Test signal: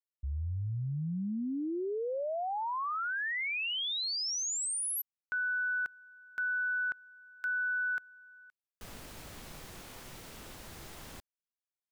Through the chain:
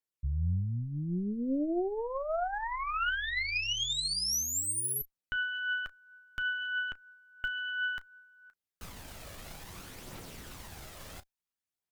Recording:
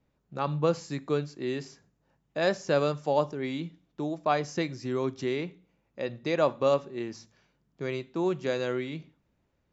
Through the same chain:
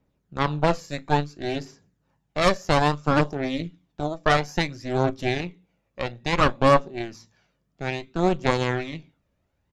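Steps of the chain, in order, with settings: early reflections 11 ms -13.5 dB, 34 ms -16 dB; added harmonics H 6 -7 dB, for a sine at -9 dBFS; phaser 0.59 Hz, delay 1.8 ms, feedback 37%

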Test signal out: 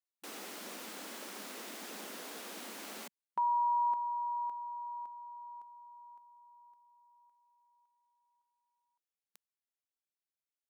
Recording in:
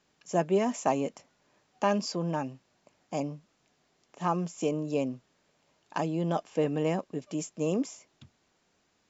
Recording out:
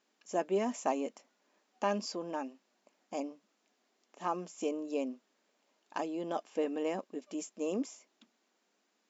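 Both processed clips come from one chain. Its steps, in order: brick-wall FIR high-pass 190 Hz; gain -5 dB

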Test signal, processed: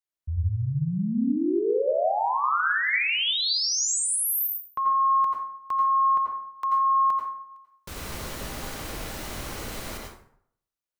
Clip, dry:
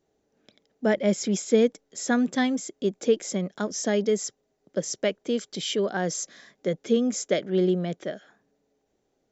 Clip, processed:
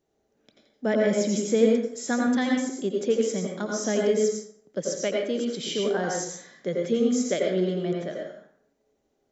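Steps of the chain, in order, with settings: plate-style reverb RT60 0.66 s, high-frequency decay 0.6×, pre-delay 75 ms, DRR -0.5 dB; gain -3 dB

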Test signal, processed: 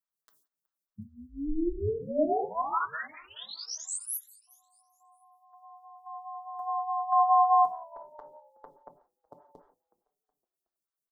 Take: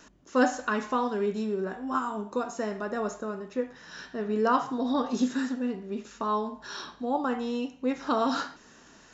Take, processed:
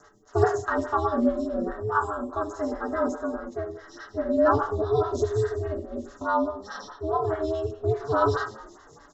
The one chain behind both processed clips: harmonic-percussive split percussive -8 dB; fixed phaser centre 490 Hz, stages 8; comb 7 ms, depth 83%; ring modulator 160 Hz; frequency-shifting echo 0.37 s, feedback 40%, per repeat -68 Hz, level -24 dB; non-linear reverb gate 0.2 s falling, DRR 4.5 dB; photocell phaser 4.8 Hz; gain +8.5 dB

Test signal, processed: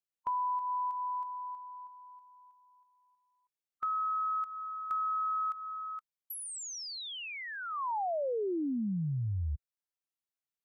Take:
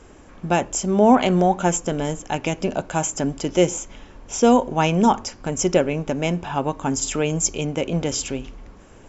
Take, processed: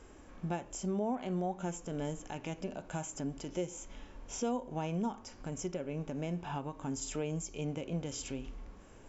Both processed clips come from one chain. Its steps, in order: compressor 6:1, threshold -26 dBFS; harmonic-percussive split percussive -9 dB; gain -5.5 dB

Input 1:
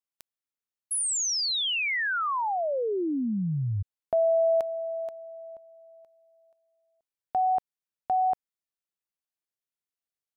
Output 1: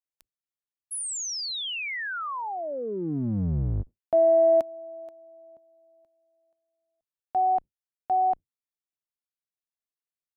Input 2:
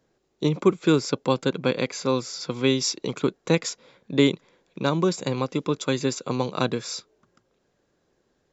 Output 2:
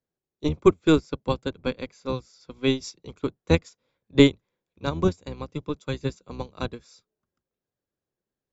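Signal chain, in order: octaver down 1 oct, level -1 dB; upward expander 2.5:1, over -30 dBFS; gain +4 dB

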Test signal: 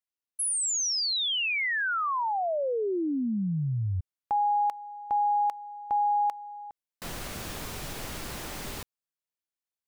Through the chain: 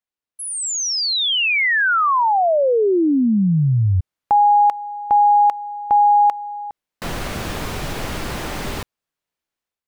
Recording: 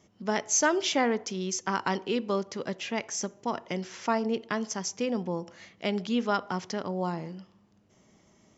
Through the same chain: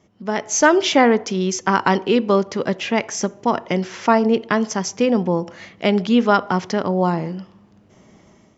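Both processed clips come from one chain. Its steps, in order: high shelf 4700 Hz -10 dB; AGC gain up to 8 dB; gain +4.5 dB

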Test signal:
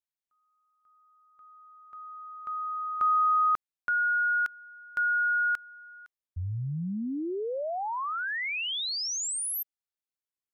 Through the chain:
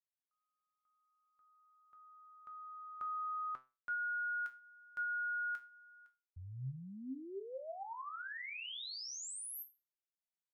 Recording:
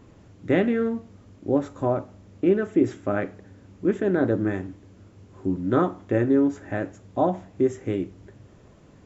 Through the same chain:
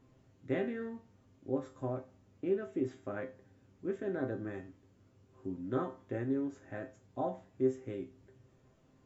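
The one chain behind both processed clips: resonator 130 Hz, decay 0.28 s, harmonics all, mix 80%; gain -5.5 dB

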